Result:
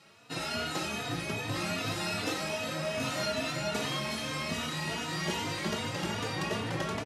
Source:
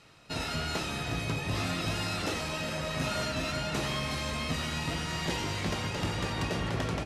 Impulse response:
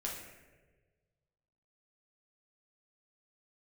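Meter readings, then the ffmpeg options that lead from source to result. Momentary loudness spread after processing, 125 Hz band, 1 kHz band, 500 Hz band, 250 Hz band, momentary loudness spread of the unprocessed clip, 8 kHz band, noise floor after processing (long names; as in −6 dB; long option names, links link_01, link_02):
2 LU, −4.5 dB, −0.5 dB, +1.0 dB, −1.0 dB, 2 LU, +0.5 dB, −38 dBFS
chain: -filter_complex "[0:a]highpass=140,asplit=2[link_01][link_02];[1:a]atrim=start_sample=2205,highshelf=frequency=11000:gain=10[link_03];[link_02][link_03]afir=irnorm=-1:irlink=0,volume=-6dB[link_04];[link_01][link_04]amix=inputs=2:normalize=0,asplit=2[link_05][link_06];[link_06]adelay=3.3,afreqshift=2.5[link_07];[link_05][link_07]amix=inputs=2:normalize=1"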